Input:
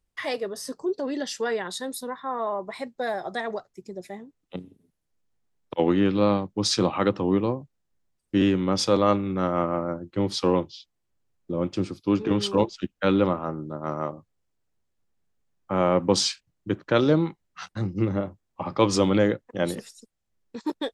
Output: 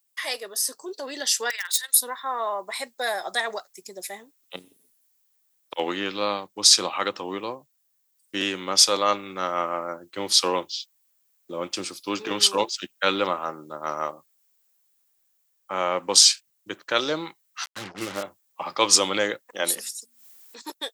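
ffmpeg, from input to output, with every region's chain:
-filter_complex "[0:a]asettb=1/sr,asplit=3[s0][s1][s2];[s0]atrim=end=1.504[s3];[s1]atrim=start=1.5:end=1.94,asetpts=PTS-STARTPTS,afade=t=in:d=0.004:c=qsin,afade=t=out:st=0.436:d=0.004:c=qsin,highpass=f=1900:t=q:w=1.7,asoftclip=type=hard:threshold=0.0422,tremolo=f=20:d=0.621[s4];[s2]atrim=start=1.936[s5];[s3][s4]acrossfade=d=0.004:c1=hsin:c2=qsin[s6];[s6][s5]acrossfade=d=0.004:c1=qsin:c2=hsin,asettb=1/sr,asplit=3[s7][s8][s9];[s7]atrim=end=17.644[s10];[s8]atrim=start=17.64:end=18.23,asetpts=PTS-STARTPTS,afade=t=in:d=0.004:c=qsin,afade=t=out:st=0.586:d=0.004:c=qsin,acrusher=bits=5:mix=0:aa=0.5,adynamicsmooth=sensitivity=4.5:basefreq=3800[s11];[s9]atrim=start=18.226[s12];[s10][s11]acrossfade=d=0.004:c1=hsin:c2=qsin[s13];[s13][s12]acrossfade=d=0.004:c1=qsin:c2=hsin,asettb=1/sr,asplit=3[s14][s15][s16];[s14]atrim=end=19.504[s17];[s15]atrim=start=19.5:end=20.62,asetpts=PTS-STARTPTS,afade=t=in:d=0.004:c=qsin,afade=t=out:st=1.116:d=0.004:c=qsin,highpass=150,bandreject=f=60:t=h:w=6,bandreject=f=120:t=h:w=6,bandreject=f=180:t=h:w=6,bandreject=f=240:t=h:w=6,acompressor=mode=upward:threshold=0.00501:ratio=2.5:attack=3.2:release=140:knee=2.83:detection=peak[s18];[s16]atrim=start=20.616[s19];[s17][s18]acrossfade=d=0.004:c1=hsin:c2=qsin[s20];[s20][s19]acrossfade=d=0.004:c1=qsin:c2=hsin,aemphasis=mode=production:type=riaa,dynaudnorm=f=160:g=13:m=1.88,lowshelf=f=390:g=-12"

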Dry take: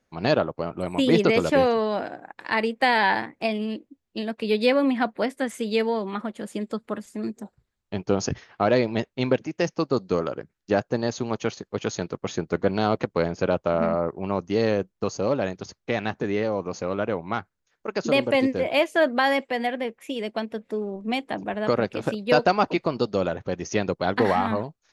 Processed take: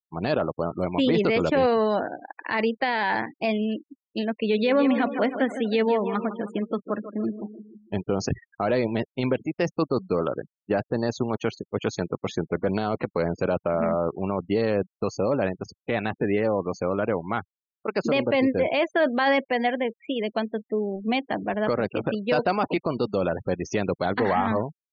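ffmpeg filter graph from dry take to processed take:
-filter_complex "[0:a]asettb=1/sr,asplit=3[s0][s1][s2];[s0]atrim=end=4.364[s3];[s1]atrim=start=4.36:end=8.02,asetpts=PTS-STARTPTS,afade=t=in:d=0.004:c=qsin,afade=t=out:st=3.656:d=0.004:c=qsin,bandreject=f=4900:w=6,aecho=1:1:157|314|471|628|785|942:0.266|0.152|0.0864|0.0493|0.0281|0.016,atrim=end_sample=161406[s4];[s2]atrim=start=8.016[s5];[s3][s4]acrossfade=d=0.004:c1=hsin:c2=qsin[s6];[s6][s5]acrossfade=d=0.004:c1=qsin:c2=hsin,afftfilt=real='re*gte(hypot(re,im),0.0158)':imag='im*gte(hypot(re,im),0.0158)':win_size=1024:overlap=0.75,lowpass=4600,alimiter=limit=0.158:level=0:latency=1:release=12,volume=1.33"

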